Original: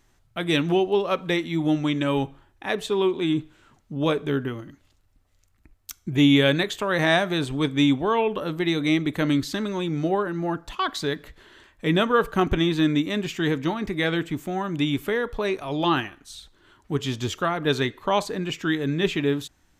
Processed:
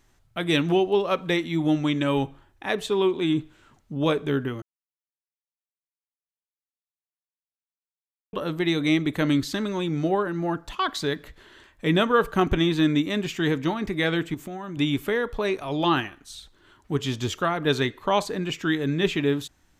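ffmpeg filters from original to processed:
-filter_complex "[0:a]asettb=1/sr,asplit=3[s0][s1][s2];[s0]atrim=end=14.344[s3];[s1]atrim=start=14.34:end=14.77,asetpts=PTS-STARTPTS,afade=t=in:d=0.004:c=qsin,afade=t=out:st=0.426:d=0.004:c=qsin,acompressor=threshold=0.0316:ratio=10:attack=3.2:release=140:knee=1:detection=peak[s4];[s2]atrim=start=14.766[s5];[s3][s4]acrossfade=d=0.004:c1=hsin:c2=qsin[s6];[s6][s5]acrossfade=d=0.004:c1=qsin:c2=hsin,asplit=3[s7][s8][s9];[s7]atrim=end=4.62,asetpts=PTS-STARTPTS,afade=t=out:st=4.616:d=0.004:c=hsin[s10];[s8]atrim=start=4.62:end=8.33,asetpts=PTS-STARTPTS,volume=0[s11];[s9]atrim=start=8.33,asetpts=PTS-STARTPTS,afade=t=in:d=0.004:c=hsin[s12];[s10][s11][s12]concat=n=3:v=0:a=1"

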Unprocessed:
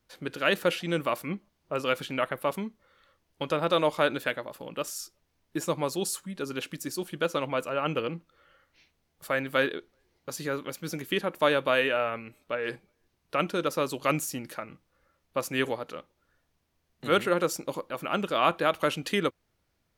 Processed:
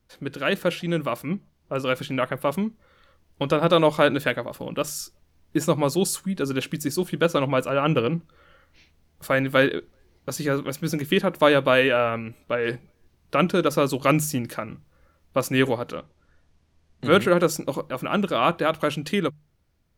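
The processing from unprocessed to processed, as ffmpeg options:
-filter_complex "[0:a]asettb=1/sr,asplit=3[s0][s1][s2];[s0]atrim=end=15.964[s3];[s1]atrim=start=15.96:end=17.11,asetpts=PTS-STARTPTS,afade=t=in:d=0.004:c=qsin,afade=t=out:st=1.146:d=0.004:c=qsin,lowpass=8800[s4];[s2]atrim=start=17.106[s5];[s3][s4]acrossfade=d=0.004:c1=hsin:c2=qsin[s6];[s6][s5]acrossfade=d=0.004:c1=qsin:c2=hsin,lowshelf=f=220:g=11,bandreject=f=50:t=h:w=6,bandreject=f=100:t=h:w=6,bandreject=f=150:t=h:w=6,dynaudnorm=f=530:g=9:m=1.88"

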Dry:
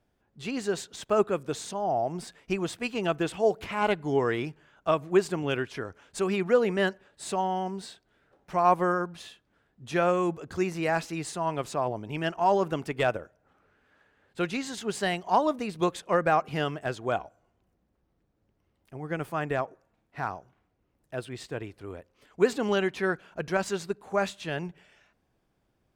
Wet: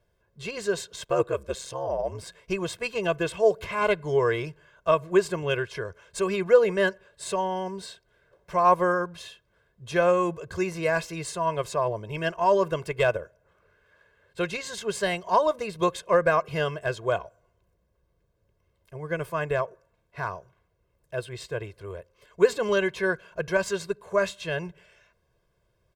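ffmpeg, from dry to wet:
-filter_complex "[0:a]asettb=1/sr,asplit=3[s0][s1][s2];[s0]atrim=end=1.064[s3];[s1]atrim=start=1.06:end=2.26,asetpts=PTS-STARTPTS,afade=t=in:d=0.004:c=qsin,afade=t=out:st=1.196:d=0.004:c=qsin,aeval=exprs='val(0)*sin(2*PI*67*n/s)':c=same[s4];[s2]atrim=start=2.256[s5];[s3][s4]acrossfade=d=0.004:c1=hsin:c2=qsin[s6];[s6][s5]acrossfade=d=0.004:c1=qsin:c2=hsin,aecho=1:1:1.9:0.87"

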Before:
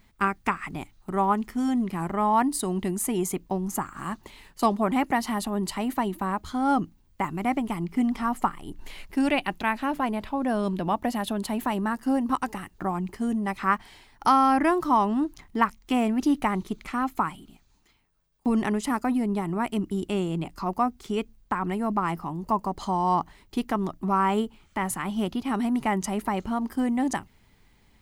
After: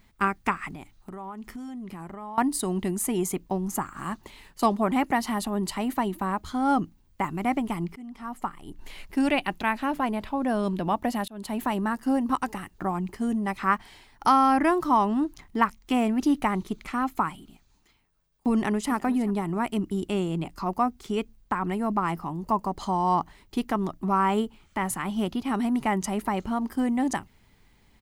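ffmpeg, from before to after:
-filter_complex "[0:a]asettb=1/sr,asplit=3[s0][s1][s2];[s0]atrim=end=0.724[s3];[s1]atrim=start=0.72:end=2.38,asetpts=PTS-STARTPTS,afade=t=in:d=0.004:c=qsin,afade=t=out:st=1.656:d=0.004:c=qsin,acompressor=threshold=0.0178:ratio=8:attack=3.2:release=140:knee=1:detection=peak[s4];[s2]atrim=start=2.376[s5];[s3][s4]acrossfade=d=0.004:c1=hsin:c2=qsin[s6];[s6][s5]acrossfade=d=0.004:c1=qsin:c2=hsin,asplit=2[s7][s8];[s8]afade=t=in:st=18.52:d=0.01,afade=t=out:st=18.93:d=0.01,aecho=0:1:370|740:0.141254|0.0211881[s9];[s7][s9]amix=inputs=2:normalize=0,asplit=3[s10][s11][s12];[s10]atrim=end=7.96,asetpts=PTS-STARTPTS,afade=t=out:st=7.956:d=0.004:c=hsin:silence=0.0749894[s13];[s11]atrim=start=7.96:end=11.28,asetpts=PTS-STARTPTS,afade=t=in:d=1.12:silence=0.0749894,afade=t=out:st=3.316:d=0.004:c=hsin[s14];[s12]atrim=start=11.28,asetpts=PTS-STARTPTS,afade=t=in:d=0.42:c=qsin[s15];[s13][s14][s15]concat=n=3:v=0:a=1"

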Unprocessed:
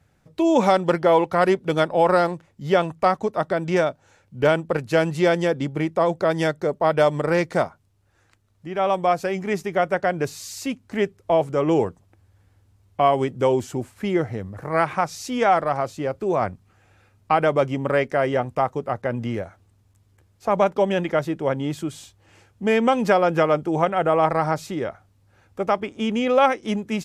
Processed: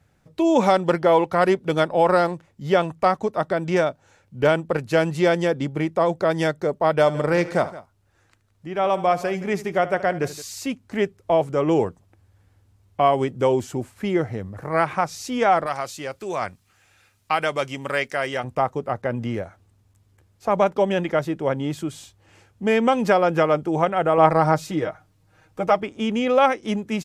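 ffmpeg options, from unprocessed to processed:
-filter_complex "[0:a]asplit=3[s0][s1][s2];[s0]afade=t=out:st=7.06:d=0.02[s3];[s1]aecho=1:1:75|170:0.15|0.133,afade=t=in:st=7.06:d=0.02,afade=t=out:st=10.41:d=0.02[s4];[s2]afade=t=in:st=10.41:d=0.02[s5];[s3][s4][s5]amix=inputs=3:normalize=0,asettb=1/sr,asplit=3[s6][s7][s8];[s6]atrim=end=15.664[s9];[s7]atrim=start=15.66:end=18.44,asetpts=PTS-STARTPTS,afade=t=in:d=0.004:c=qsin,afade=t=out:st=2.776:d=0.004:c=qsin,tiltshelf=f=1400:g=-8.5[s10];[s8]atrim=start=18.436[s11];[s9][s10]acrossfade=d=0.004:c1=hsin:c2=qsin[s12];[s12][s11]acrossfade=d=0.004:c1=qsin:c2=hsin,asettb=1/sr,asplit=3[s13][s14][s15];[s13]atrim=end=24.174[s16];[s14]atrim=start=24.17:end=25.83,asetpts=PTS-STARTPTS,afade=t=in:d=0.004:c=qsin,afade=t=out:st=1.656:d=0.004:c=qsin,aecho=1:1:6.4:0.73,atrim=end_sample=73206[s17];[s15]atrim=start=25.826[s18];[s16][s17]acrossfade=d=0.004:c1=hsin:c2=qsin[s19];[s19][s18]acrossfade=d=0.004:c1=qsin:c2=hsin"

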